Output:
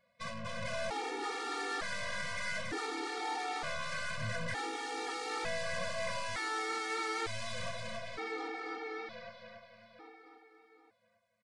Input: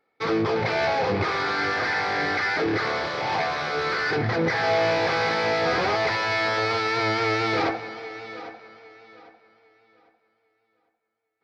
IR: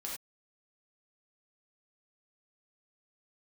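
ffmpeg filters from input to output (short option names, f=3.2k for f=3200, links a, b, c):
-filter_complex "[0:a]aeval=exprs='(tanh(50.1*val(0)+0.35)-tanh(0.35))/50.1':c=same,alimiter=level_in=16dB:limit=-24dB:level=0:latency=1:release=78,volume=-16dB,asplit=2[a][b];[b]aecho=0:1:280|560|840|1120:0.596|0.179|0.0536|0.0161[c];[a][c]amix=inputs=2:normalize=0,aresample=22050,aresample=44100,afftfilt=real='re*gt(sin(2*PI*0.55*pts/sr)*(1-2*mod(floor(b*sr/1024/240),2)),0)':imag='im*gt(sin(2*PI*0.55*pts/sr)*(1-2*mod(floor(b*sr/1024/240),2)),0)':win_size=1024:overlap=0.75,volume=7.5dB"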